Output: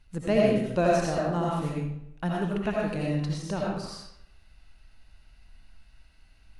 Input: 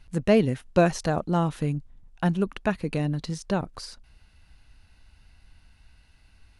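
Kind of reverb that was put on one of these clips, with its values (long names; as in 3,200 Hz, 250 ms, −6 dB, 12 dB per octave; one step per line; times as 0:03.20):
comb and all-pass reverb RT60 0.77 s, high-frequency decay 0.8×, pre-delay 45 ms, DRR −4 dB
level −6.5 dB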